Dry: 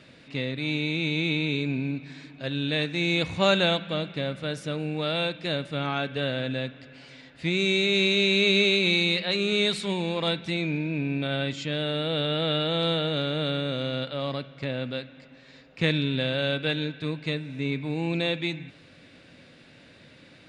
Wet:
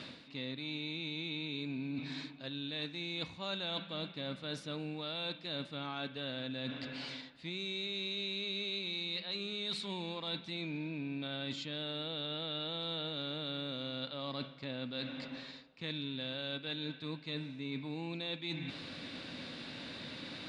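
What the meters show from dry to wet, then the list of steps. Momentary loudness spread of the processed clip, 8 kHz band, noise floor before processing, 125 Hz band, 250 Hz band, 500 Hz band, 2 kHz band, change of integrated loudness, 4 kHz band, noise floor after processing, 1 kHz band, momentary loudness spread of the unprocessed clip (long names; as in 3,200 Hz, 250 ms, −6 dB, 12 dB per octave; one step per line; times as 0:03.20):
8 LU, −15.0 dB, −53 dBFS, −15.0 dB, −12.5 dB, −16.0 dB, −15.5 dB, −13.0 dB, −10.0 dB, −53 dBFS, −12.5 dB, 11 LU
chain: octave-band graphic EQ 250/1,000/4,000 Hz +7/+8/+11 dB
reversed playback
downward compressor 6 to 1, threshold −40 dBFS, peak gain reduction 26.5 dB
reversed playback
level +1 dB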